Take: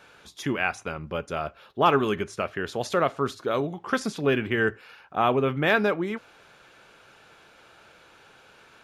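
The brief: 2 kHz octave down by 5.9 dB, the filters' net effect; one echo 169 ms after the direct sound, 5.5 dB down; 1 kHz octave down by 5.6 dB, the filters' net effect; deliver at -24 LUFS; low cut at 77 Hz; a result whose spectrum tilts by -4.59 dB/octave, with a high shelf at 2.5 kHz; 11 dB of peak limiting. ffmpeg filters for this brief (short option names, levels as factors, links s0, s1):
-af "highpass=77,equalizer=f=1000:t=o:g=-6.5,equalizer=f=2000:t=o:g=-8.5,highshelf=f=2500:g=6.5,alimiter=limit=0.075:level=0:latency=1,aecho=1:1:169:0.531,volume=2.82"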